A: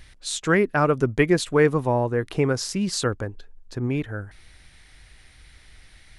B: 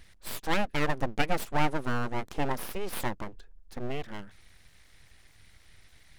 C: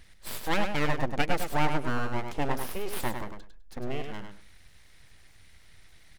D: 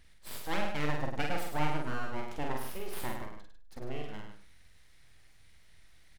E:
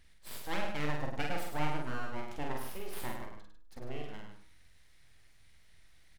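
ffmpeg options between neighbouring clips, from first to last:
ffmpeg -i in.wav -af "aeval=exprs='abs(val(0))':channel_layout=same,volume=-5.5dB" out.wav
ffmpeg -i in.wav -af "aecho=1:1:102|204|306:0.473|0.0804|0.0137" out.wav
ffmpeg -i in.wav -filter_complex "[0:a]asplit=2[link_01][link_02];[link_02]adelay=47,volume=-3dB[link_03];[link_01][link_03]amix=inputs=2:normalize=0,volume=-7.5dB" out.wav
ffmpeg -i in.wav -af "bandreject=frequency=52.28:width_type=h:width=4,bandreject=frequency=104.56:width_type=h:width=4,bandreject=frequency=156.84:width_type=h:width=4,bandreject=frequency=209.12:width_type=h:width=4,bandreject=frequency=261.4:width_type=h:width=4,bandreject=frequency=313.68:width_type=h:width=4,bandreject=frequency=365.96:width_type=h:width=4,bandreject=frequency=418.24:width_type=h:width=4,bandreject=frequency=470.52:width_type=h:width=4,bandreject=frequency=522.8:width_type=h:width=4,bandreject=frequency=575.08:width_type=h:width=4,bandreject=frequency=627.36:width_type=h:width=4,bandreject=frequency=679.64:width_type=h:width=4,bandreject=frequency=731.92:width_type=h:width=4,bandreject=frequency=784.2:width_type=h:width=4,bandreject=frequency=836.48:width_type=h:width=4,bandreject=frequency=888.76:width_type=h:width=4,bandreject=frequency=941.04:width_type=h:width=4,bandreject=frequency=993.32:width_type=h:width=4,bandreject=frequency=1045.6:width_type=h:width=4,bandreject=frequency=1097.88:width_type=h:width=4,bandreject=frequency=1150.16:width_type=h:width=4,bandreject=frequency=1202.44:width_type=h:width=4,bandreject=frequency=1254.72:width_type=h:width=4,bandreject=frequency=1307:width_type=h:width=4,bandreject=frequency=1359.28:width_type=h:width=4,bandreject=frequency=1411.56:width_type=h:width=4,bandreject=frequency=1463.84:width_type=h:width=4,bandreject=frequency=1516.12:width_type=h:width=4,volume=-2dB" out.wav

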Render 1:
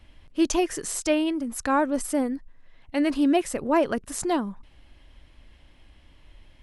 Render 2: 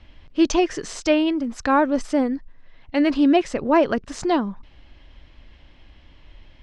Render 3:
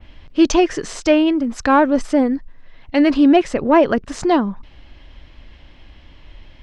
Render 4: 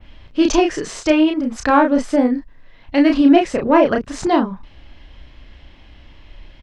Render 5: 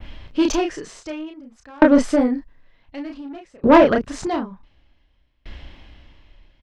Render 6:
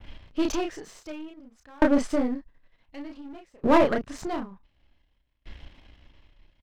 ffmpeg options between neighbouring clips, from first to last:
ffmpeg -i in.wav -af "lowpass=frequency=5800:width=0.5412,lowpass=frequency=5800:width=1.3066,volume=4.5dB" out.wav
ffmpeg -i in.wav -af "acontrast=35,adynamicequalizer=threshold=0.01:dfrequency=5600:dqfactor=0.72:tfrequency=5600:tqfactor=0.72:attack=5:release=100:ratio=0.375:range=2.5:mode=cutabove:tftype=bell" out.wav
ffmpeg -i in.wav -filter_complex "[0:a]asplit=2[link_01][link_02];[link_02]adelay=32,volume=-4dB[link_03];[link_01][link_03]amix=inputs=2:normalize=0,volume=-1dB" out.wav
ffmpeg -i in.wav -af "acontrast=79,aeval=exprs='val(0)*pow(10,-34*if(lt(mod(0.55*n/s,1),2*abs(0.55)/1000),1-mod(0.55*n/s,1)/(2*abs(0.55)/1000),(mod(0.55*n/s,1)-2*abs(0.55)/1000)/(1-2*abs(0.55)/1000))/20)':channel_layout=same" out.wav
ffmpeg -i in.wav -af "aeval=exprs='if(lt(val(0),0),0.447*val(0),val(0))':channel_layout=same,volume=-5dB" out.wav

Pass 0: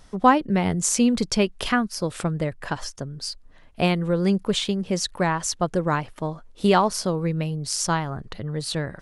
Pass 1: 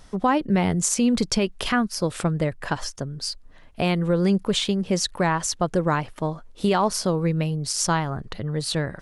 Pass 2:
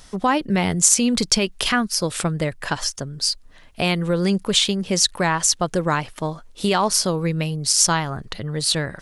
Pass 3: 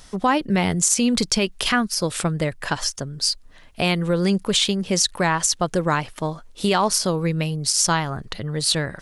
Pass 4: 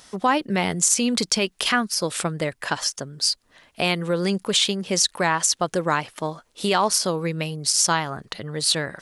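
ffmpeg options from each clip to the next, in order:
ffmpeg -i in.wav -af "alimiter=limit=-13.5dB:level=0:latency=1:release=63,volume=2dB" out.wav
ffmpeg -i in.wav -af "highshelf=frequency=2000:gain=9.5" out.wav
ffmpeg -i in.wav -af "alimiter=level_in=7dB:limit=-1dB:release=50:level=0:latency=1,volume=-7dB" out.wav
ffmpeg -i in.wav -af "highpass=frequency=260:poles=1" out.wav

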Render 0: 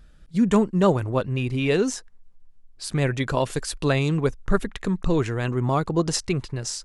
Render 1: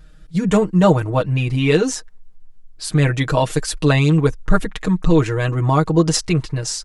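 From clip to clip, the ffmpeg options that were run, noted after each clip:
ffmpeg -i in.wav -af "aecho=1:1:6.4:0.88,volume=3.5dB" out.wav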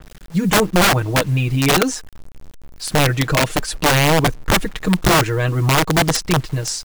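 ffmpeg -i in.wav -af "aeval=exprs='(mod(2.82*val(0)+1,2)-1)/2.82':channel_layout=same,acrusher=bits=6:mix=0:aa=0.000001,adynamicequalizer=threshold=0.0316:dfrequency=4100:dqfactor=0.7:tfrequency=4100:tqfactor=0.7:attack=5:release=100:ratio=0.375:range=2:mode=cutabove:tftype=highshelf,volume=1dB" out.wav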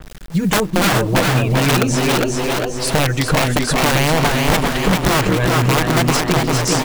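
ffmpeg -i in.wav -filter_complex "[0:a]asplit=2[link_01][link_02];[link_02]asplit=5[link_03][link_04][link_05][link_06][link_07];[link_03]adelay=410,afreqshift=120,volume=-7dB[link_08];[link_04]adelay=820,afreqshift=240,volume=-13.9dB[link_09];[link_05]adelay=1230,afreqshift=360,volume=-20.9dB[link_10];[link_06]adelay=1640,afreqshift=480,volume=-27.8dB[link_11];[link_07]adelay=2050,afreqshift=600,volume=-34.7dB[link_12];[link_08][link_09][link_10][link_11][link_12]amix=inputs=5:normalize=0[link_13];[link_01][link_13]amix=inputs=2:normalize=0,acompressor=threshold=-18dB:ratio=6,asplit=2[link_14][link_15];[link_15]adelay=392,lowpass=frequency=4200:poles=1,volume=-4dB,asplit=2[link_16][link_17];[link_17]adelay=392,lowpass=frequency=4200:poles=1,volume=0.43,asplit=2[link_18][link_19];[link_19]adelay=392,lowpass=frequency=4200:poles=1,volume=0.43,asplit=2[link_20][link_21];[link_21]adelay=392,lowpass=frequency=4200:poles=1,volume=0.43,asplit=2[link_22][link_23];[link_23]adelay=392,lowpass=frequency=4200:poles=1,volume=0.43[link_24];[link_16][link_18][link_20][link_22][link_24]amix=inputs=5:normalize=0[link_25];[link_14][link_25]amix=inputs=2:normalize=0,volume=4.5dB" out.wav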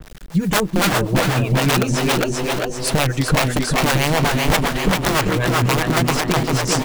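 ffmpeg -i in.wav -filter_complex "[0:a]acrossover=split=430[link_01][link_02];[link_01]aeval=exprs='val(0)*(1-0.7/2+0.7/2*cos(2*PI*7.8*n/s))':channel_layout=same[link_03];[link_02]aeval=exprs='val(0)*(1-0.7/2-0.7/2*cos(2*PI*7.8*n/s))':channel_layout=same[link_04];[link_03][link_04]amix=inputs=2:normalize=0,volume=1dB" out.wav

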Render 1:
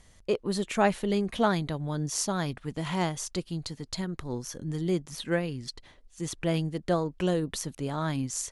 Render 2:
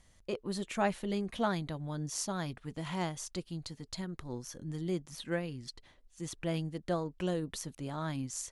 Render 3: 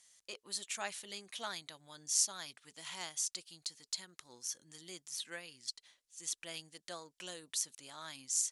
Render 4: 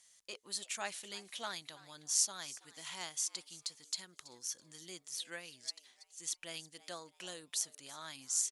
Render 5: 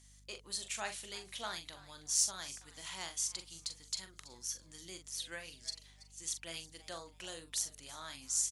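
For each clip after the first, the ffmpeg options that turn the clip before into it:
ffmpeg -i in.wav -af "bandreject=frequency=430:width=12,volume=-6.5dB" out.wav
ffmpeg -i in.wav -af "bandpass=frequency=7700:width_type=q:width=0.89:csg=0,volume=8dB" out.wav
ffmpeg -i in.wav -filter_complex "[0:a]asplit=4[link_01][link_02][link_03][link_04];[link_02]adelay=328,afreqshift=130,volume=-18.5dB[link_05];[link_03]adelay=656,afreqshift=260,volume=-27.4dB[link_06];[link_04]adelay=984,afreqshift=390,volume=-36.2dB[link_07];[link_01][link_05][link_06][link_07]amix=inputs=4:normalize=0" out.wav
ffmpeg -i in.wav -filter_complex "[0:a]asoftclip=type=tanh:threshold=-14.5dB,aeval=exprs='val(0)+0.000708*(sin(2*PI*50*n/s)+sin(2*PI*2*50*n/s)/2+sin(2*PI*3*50*n/s)/3+sin(2*PI*4*50*n/s)/4+sin(2*PI*5*50*n/s)/5)':channel_layout=same,asplit=2[link_01][link_02];[link_02]adelay=42,volume=-8.5dB[link_03];[link_01][link_03]amix=inputs=2:normalize=0" out.wav

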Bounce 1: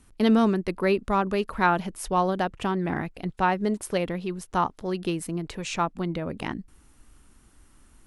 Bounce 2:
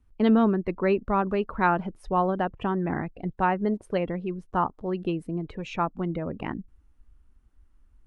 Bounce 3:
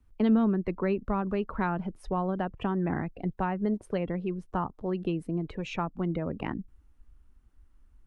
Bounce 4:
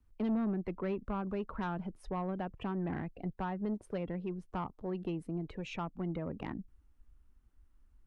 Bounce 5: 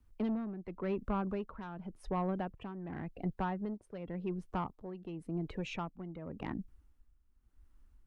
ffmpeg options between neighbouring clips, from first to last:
ffmpeg -i in.wav -af "aemphasis=mode=reproduction:type=75kf,afftdn=noise_reduction=14:noise_floor=-43" out.wav
ffmpeg -i in.wav -filter_complex "[0:a]acrossover=split=230[link_01][link_02];[link_02]acompressor=threshold=-30dB:ratio=3[link_03];[link_01][link_03]amix=inputs=2:normalize=0" out.wav
ffmpeg -i in.wav -af "asoftclip=type=tanh:threshold=-22dB,volume=-5.5dB" out.wav
ffmpeg -i in.wav -af "tremolo=f=0.9:d=0.72,volume=2.5dB" out.wav

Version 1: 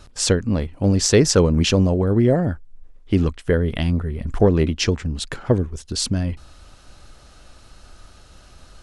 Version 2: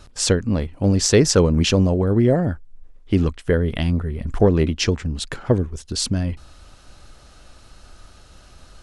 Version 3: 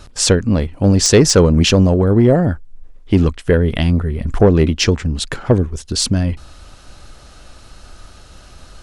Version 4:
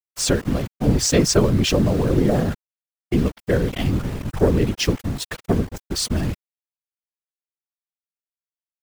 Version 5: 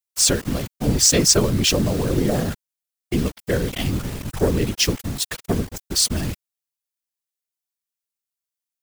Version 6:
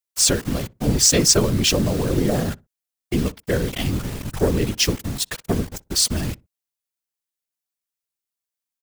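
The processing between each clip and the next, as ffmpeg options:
ffmpeg -i in.wav -af anull out.wav
ffmpeg -i in.wav -af "asoftclip=type=tanh:threshold=-6.5dB,volume=6dB" out.wav
ffmpeg -i in.wav -af "aeval=exprs='val(0)*gte(abs(val(0)),0.0794)':channel_layout=same,afftfilt=real='hypot(re,im)*cos(2*PI*random(0))':imag='hypot(re,im)*sin(2*PI*random(1))':win_size=512:overlap=0.75" out.wav
ffmpeg -i in.wav -af "highshelf=frequency=3300:gain=11.5,volume=-2.5dB" out.wav
ffmpeg -i in.wav -filter_complex "[0:a]asplit=2[link_01][link_02];[link_02]adelay=61,lowpass=frequency=870:poles=1,volume=-21.5dB,asplit=2[link_03][link_04];[link_04]adelay=61,lowpass=frequency=870:poles=1,volume=0.25[link_05];[link_01][link_03][link_05]amix=inputs=3:normalize=0" out.wav

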